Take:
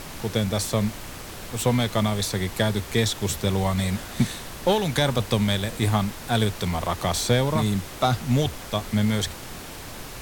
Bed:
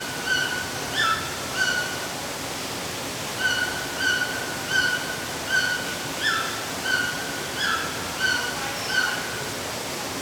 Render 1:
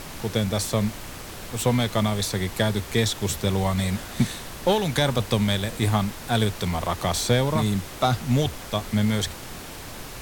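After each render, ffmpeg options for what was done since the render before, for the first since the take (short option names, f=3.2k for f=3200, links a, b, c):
-af anull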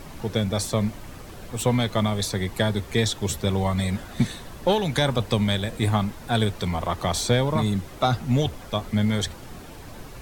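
-af "afftdn=nr=9:nf=-38"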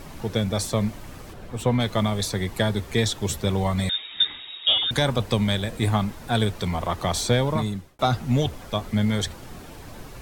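-filter_complex "[0:a]asplit=3[a][b][c];[a]afade=t=out:st=1.32:d=0.02[d];[b]highshelf=f=3.5k:g=-9.5,afade=t=in:st=1.32:d=0.02,afade=t=out:st=1.79:d=0.02[e];[c]afade=t=in:st=1.79:d=0.02[f];[d][e][f]amix=inputs=3:normalize=0,asettb=1/sr,asplit=3[g][h][i];[g]atrim=end=3.894[j];[h]atrim=start=3.89:end=4.91,asetpts=PTS-STARTPTS,afade=t=in:d=0.004:c=qsin,afade=t=out:st=1.016:d=0.004:c=qsin,lowpass=f=3.2k:t=q:w=0.5098,lowpass=f=3.2k:t=q:w=0.6013,lowpass=f=3.2k:t=q:w=0.9,lowpass=f=3.2k:t=q:w=2.563,afreqshift=-3800[k];[i]atrim=start=4.906[l];[j][k]acrossfade=d=0.004:c1=hsin:c2=qsin[m];[m][l]acrossfade=d=0.004:c1=qsin:c2=hsin,asplit=2[n][o];[n]atrim=end=7.99,asetpts=PTS-STARTPTS,afade=t=out:st=7.51:d=0.48[p];[o]atrim=start=7.99,asetpts=PTS-STARTPTS,afade=t=in:d=0.004:c=hsin[q];[p][q]concat=n=2:v=0:a=1"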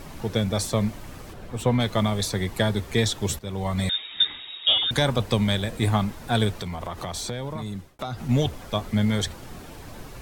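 -filter_complex "[0:a]asettb=1/sr,asplit=3[a][b][c];[a]atrim=end=6.544[d];[b]atrim=start=6.54:end=8.29,asetpts=PTS-STARTPTS,afade=t=in:d=0.004:c=qsin,afade=t=out:st=1.746:d=0.004:c=qsin,acompressor=threshold=-28dB:ratio=5:attack=3.2:release=140:knee=1:detection=peak[e];[c]atrim=start=8.286[f];[d][e]acrossfade=d=0.004:c1=hsin:c2=qsin[g];[g][f]acrossfade=d=0.004:c1=qsin:c2=hsin,asplit=2[h][i];[h]atrim=end=3.39,asetpts=PTS-STARTPTS,afade=t=out:st=3.386:d=0.004:c=hsin:silence=0.16788[j];[i]atrim=start=3.39,asetpts=PTS-STARTPTS,afade=t=in:d=0.46:silence=0.16788[k];[j][k]concat=n=2:v=0:a=1"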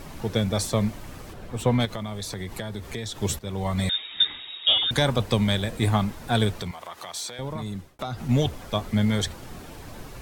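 -filter_complex "[0:a]asettb=1/sr,asplit=3[a][b][c];[a]atrim=end=1.854[d];[b]atrim=start=1.85:end=3.2,asetpts=PTS-STARTPTS,afade=t=in:d=0.004:c=qsin,afade=t=out:st=1.346:d=0.004:c=qsin,acompressor=threshold=-30dB:ratio=4:attack=3.2:release=140:knee=1:detection=peak[e];[c]atrim=start=3.196[f];[d][e]acrossfade=d=0.004:c1=hsin:c2=qsin[g];[g][f]acrossfade=d=0.004:c1=qsin:c2=hsin,asettb=1/sr,asplit=3[h][i][j];[h]atrim=end=6.714[k];[i]atrim=start=6.71:end=7.39,asetpts=PTS-STARTPTS,afade=t=in:d=0.004:c=qsin,afade=t=out:st=0.676:d=0.004:c=qsin,highpass=f=1.2k:p=1[l];[j]atrim=start=7.386[m];[k][l]acrossfade=d=0.004:c1=hsin:c2=qsin[n];[n][m]acrossfade=d=0.004:c1=qsin:c2=hsin"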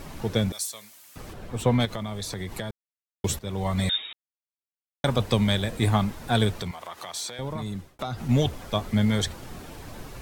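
-filter_complex "[0:a]asettb=1/sr,asplit=3[a][b][c];[a]atrim=end=0.524[d];[b]atrim=start=0.52:end=1.16,asetpts=PTS-STARTPTS,afade=t=in:d=0.004:c=qsin,afade=t=out:st=0.636:d=0.004:c=qsin,aderivative[e];[c]atrim=start=1.156[f];[d][e]acrossfade=d=0.004:c1=hsin:c2=qsin[g];[g][f]acrossfade=d=0.004:c1=qsin:c2=hsin,asplit=5[h][i][j][k][l];[h]atrim=end=2.71,asetpts=PTS-STARTPTS,afade=t=out:st=2.706:d=0.004:c=hsin[m];[i]atrim=start=2.71:end=3.24,asetpts=PTS-STARTPTS,volume=0[n];[j]atrim=start=3.24:end=4.13,asetpts=PTS-STARTPTS,afade=t=in:d=0.004:c=hsin,afade=t=out:st=0.886:d=0.004:c=hsin[o];[k]atrim=start=4.13:end=5.04,asetpts=PTS-STARTPTS,volume=0[p];[l]atrim=start=5.04,asetpts=PTS-STARTPTS,afade=t=in:d=0.004:c=hsin[q];[m][n][o][p][q]concat=n=5:v=0:a=1"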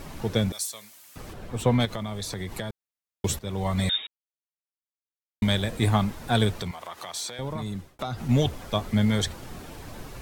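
-filter_complex "[0:a]asplit=3[a][b][c];[a]atrim=end=4.07,asetpts=PTS-STARTPTS,afade=t=out:st=4.066:d=0.004:c=hsin[d];[b]atrim=start=4.07:end=5.42,asetpts=PTS-STARTPTS,volume=0[e];[c]atrim=start=5.42,asetpts=PTS-STARTPTS,afade=t=in:d=0.004:c=hsin[f];[d][e][f]concat=n=3:v=0:a=1"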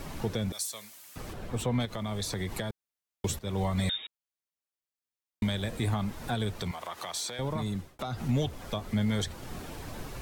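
-filter_complex "[0:a]alimiter=limit=-19.5dB:level=0:latency=1:release=298,acrossover=split=460[a][b];[b]acompressor=threshold=-31dB:ratio=3[c];[a][c]amix=inputs=2:normalize=0"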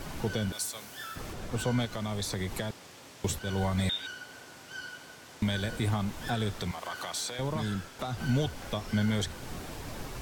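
-filter_complex "[1:a]volume=-20dB[a];[0:a][a]amix=inputs=2:normalize=0"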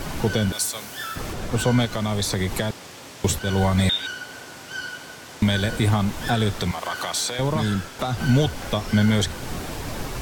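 -af "volume=9.5dB"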